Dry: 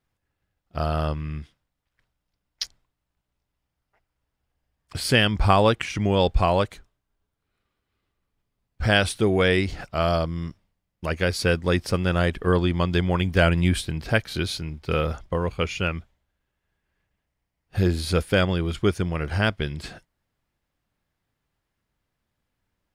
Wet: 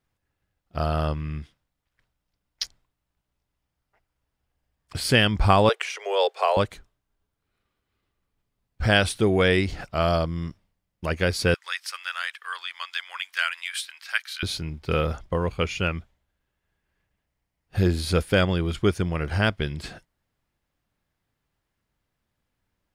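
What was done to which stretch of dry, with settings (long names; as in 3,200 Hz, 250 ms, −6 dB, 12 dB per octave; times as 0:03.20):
0:05.69–0:06.57: Butterworth high-pass 400 Hz 96 dB per octave
0:11.54–0:14.43: high-pass filter 1,300 Hz 24 dB per octave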